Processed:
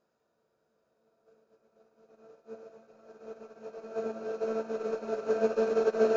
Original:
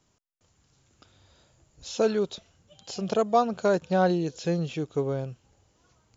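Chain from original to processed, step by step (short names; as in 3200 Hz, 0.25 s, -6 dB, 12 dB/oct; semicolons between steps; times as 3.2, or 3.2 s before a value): per-bin compression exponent 0.6; LPF 6200 Hz 24 dB/oct; bell 3600 Hz -10 dB 0.7 oct; grains 0.24 s, grains 2.3/s, spray 0.629 s, pitch spread up and down by 0 st; low shelf 95 Hz -8.5 dB; in parallel at -9 dB: soft clip -27 dBFS, distortion -8 dB; on the sum: split-band echo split 590 Hz, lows 0.304 s, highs 0.11 s, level -6 dB; on a send at -11 dB: reverb, pre-delay 3 ms; on the sum: Paulstretch 37×, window 0.50 s, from 2.02; upward expander 2.5:1, over -43 dBFS; gain +2.5 dB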